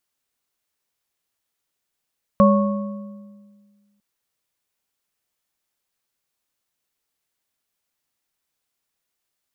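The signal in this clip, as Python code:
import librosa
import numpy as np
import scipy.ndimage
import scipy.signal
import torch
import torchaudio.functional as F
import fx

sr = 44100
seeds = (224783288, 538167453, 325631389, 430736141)

y = fx.strike_metal(sr, length_s=1.6, level_db=-11.0, body='bar', hz=204.0, decay_s=1.77, tilt_db=2, modes=3)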